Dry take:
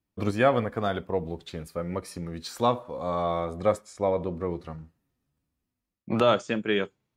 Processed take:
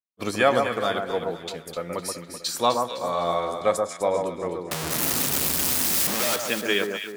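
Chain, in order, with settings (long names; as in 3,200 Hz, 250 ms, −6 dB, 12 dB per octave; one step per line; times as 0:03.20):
0:04.71–0:06.36: sign of each sample alone
high-pass filter 380 Hz 6 dB per octave
high-shelf EQ 3,300 Hz +11 dB
noise gate −38 dBFS, range −24 dB
on a send: delay that swaps between a low-pass and a high-pass 127 ms, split 1,500 Hz, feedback 64%, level −4 dB
on the sum: level +2.5 dB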